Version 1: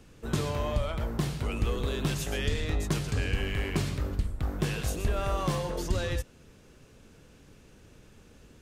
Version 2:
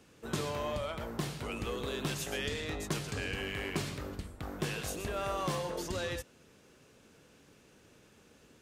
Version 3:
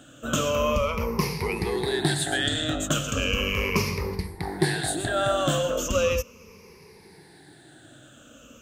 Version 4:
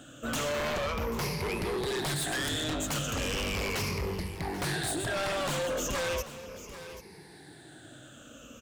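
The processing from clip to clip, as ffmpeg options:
ffmpeg -i in.wav -af "highpass=frequency=250:poles=1,volume=-2dB" out.wav
ffmpeg -i in.wav -af "afftfilt=real='re*pow(10,18/40*sin(2*PI*(0.84*log(max(b,1)*sr/1024/100)/log(2)-(-0.37)*(pts-256)/sr)))':imag='im*pow(10,18/40*sin(2*PI*(0.84*log(max(b,1)*sr/1024/100)/log(2)-(-0.37)*(pts-256)/sr)))':win_size=1024:overlap=0.75,volume=7.5dB" out.wav
ffmpeg -i in.wav -af "aeval=exprs='0.0708*(abs(mod(val(0)/0.0708+3,4)-2)-1)':channel_layout=same,aecho=1:1:787:0.141,asoftclip=type=tanh:threshold=-27.5dB" out.wav

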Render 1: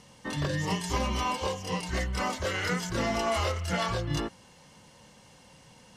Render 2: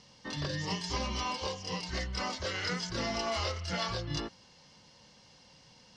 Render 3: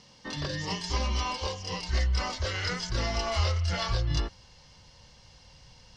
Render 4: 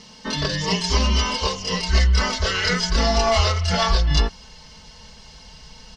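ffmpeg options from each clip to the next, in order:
ffmpeg -i in.wav -af "lowpass=frequency=5000:width_type=q:width=3.1,volume=-6dB" out.wav
ffmpeg -i in.wav -af "asubboost=boost=10:cutoff=72,volume=2.5dB" out.wav
ffmpeg -i in.wav -af "aecho=1:1:4.6:0.87,volume=8.5dB" out.wav

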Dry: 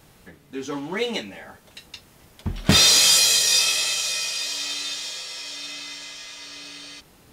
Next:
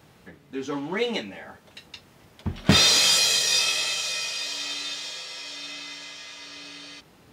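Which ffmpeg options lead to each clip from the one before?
ffmpeg -i in.wav -af "highpass=75,equalizer=frequency=12000:width_type=o:width=1.6:gain=-9" out.wav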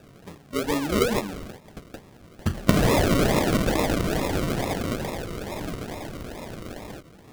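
ffmpeg -i in.wav -af "acompressor=threshold=-22dB:ratio=6,acrusher=samples=41:mix=1:aa=0.000001:lfo=1:lforange=24.6:lforate=2.3,volume=5dB" out.wav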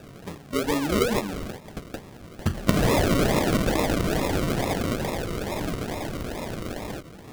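ffmpeg -i in.wav -af "acompressor=threshold=-35dB:ratio=1.5,volume=5.5dB" out.wav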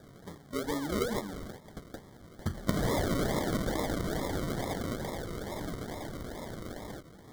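ffmpeg -i in.wav -af "asuperstop=centerf=2600:order=8:qfactor=3.3,volume=-8.5dB" out.wav

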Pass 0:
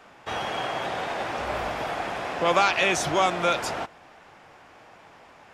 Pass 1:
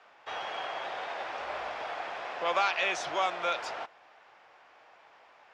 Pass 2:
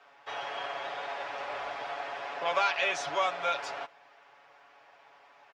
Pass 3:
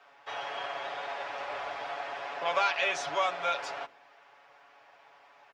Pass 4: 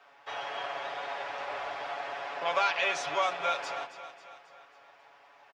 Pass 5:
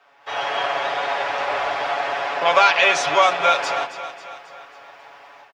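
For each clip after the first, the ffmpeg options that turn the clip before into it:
ffmpeg -i in.wav -filter_complex "[0:a]acrossover=split=440 6200:gain=0.141 1 0.0708[link_01][link_02][link_03];[link_01][link_02][link_03]amix=inputs=3:normalize=0,volume=-6dB" out.wav
ffmpeg -i in.wav -af "aecho=1:1:7.1:0.75,volume=-2dB" out.wav
ffmpeg -i in.wav -af "bandreject=frequency=47.02:width_type=h:width=4,bandreject=frequency=94.04:width_type=h:width=4,bandreject=frequency=141.06:width_type=h:width=4,bandreject=frequency=188.08:width_type=h:width=4,bandreject=frequency=235.1:width_type=h:width=4,bandreject=frequency=282.12:width_type=h:width=4,bandreject=frequency=329.14:width_type=h:width=4,bandreject=frequency=376.16:width_type=h:width=4,bandreject=frequency=423.18:width_type=h:width=4,bandreject=frequency=470.2:width_type=h:width=4,bandreject=frequency=517.22:width_type=h:width=4" out.wav
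ffmpeg -i in.wav -af "aecho=1:1:271|542|813|1084|1355:0.224|0.119|0.0629|0.0333|0.0177" out.wav
ffmpeg -i in.wav -af "dynaudnorm=framelen=200:gausssize=3:maxgain=12dB,volume=1.5dB" out.wav

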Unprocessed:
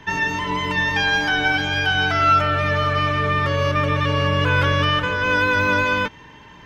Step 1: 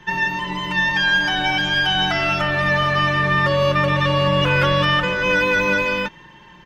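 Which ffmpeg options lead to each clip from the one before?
ffmpeg -i in.wav -af "aecho=1:1:5.6:0.77,dynaudnorm=framelen=220:gausssize=11:maxgain=6.5dB,volume=-3.5dB" out.wav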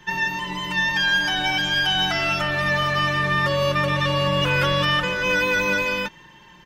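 ffmpeg -i in.wav -af "highshelf=frequency=5300:gain=11.5,volume=-4dB" out.wav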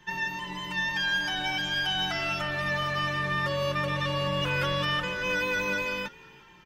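ffmpeg -i in.wav -filter_complex "[0:a]asplit=4[link_01][link_02][link_03][link_04];[link_02]adelay=348,afreqshift=-60,volume=-23.5dB[link_05];[link_03]adelay=696,afreqshift=-120,volume=-30.6dB[link_06];[link_04]adelay=1044,afreqshift=-180,volume=-37.8dB[link_07];[link_01][link_05][link_06][link_07]amix=inputs=4:normalize=0,volume=-7.5dB" out.wav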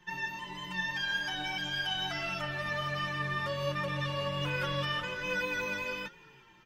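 ffmpeg -i in.wav -af "flanger=delay=5.3:depth=4:regen=45:speed=1.3:shape=triangular,volume=-1.5dB" out.wav

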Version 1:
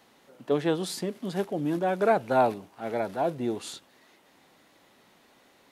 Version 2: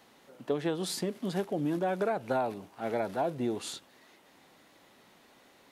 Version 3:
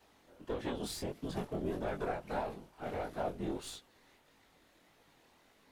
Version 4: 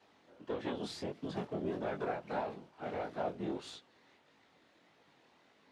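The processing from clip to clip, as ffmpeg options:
ffmpeg -i in.wav -af "acompressor=threshold=-26dB:ratio=12" out.wav
ffmpeg -i in.wav -af "aeval=exprs='if(lt(val(0),0),0.447*val(0),val(0))':channel_layout=same,afftfilt=real='hypot(re,im)*cos(2*PI*random(0))':imag='hypot(re,im)*sin(2*PI*random(1))':win_size=512:overlap=0.75,flanger=delay=18.5:depth=6.7:speed=1.6,volume=5dB" out.wav
ffmpeg -i in.wav -af "highpass=120,lowpass=5100" out.wav

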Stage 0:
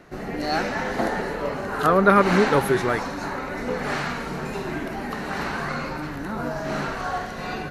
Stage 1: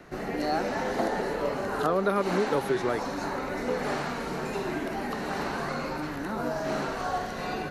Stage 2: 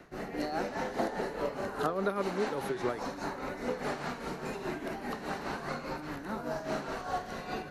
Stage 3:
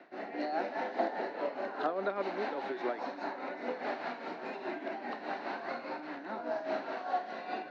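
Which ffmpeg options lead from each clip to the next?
ffmpeg -i in.wav -filter_complex "[0:a]acrossover=split=240|1000|2800|7700[link_01][link_02][link_03][link_04][link_05];[link_01]acompressor=threshold=-41dB:ratio=4[link_06];[link_02]acompressor=threshold=-24dB:ratio=4[link_07];[link_03]acompressor=threshold=-41dB:ratio=4[link_08];[link_04]acompressor=threshold=-44dB:ratio=4[link_09];[link_05]acompressor=threshold=-55dB:ratio=4[link_10];[link_06][link_07][link_08][link_09][link_10]amix=inputs=5:normalize=0" out.wav
ffmpeg -i in.wav -af "tremolo=f=4.9:d=0.6,volume=-3dB" out.wav
ffmpeg -i in.wav -af "highpass=frequency=270:width=0.5412,highpass=frequency=270:width=1.3066,equalizer=frequency=440:width_type=q:width=4:gain=-7,equalizer=frequency=690:width_type=q:width=4:gain=4,equalizer=frequency=1200:width_type=q:width=4:gain=-6,equalizer=frequency=3100:width_type=q:width=4:gain=-4,lowpass=frequency=4000:width=0.5412,lowpass=frequency=4000:width=1.3066" out.wav

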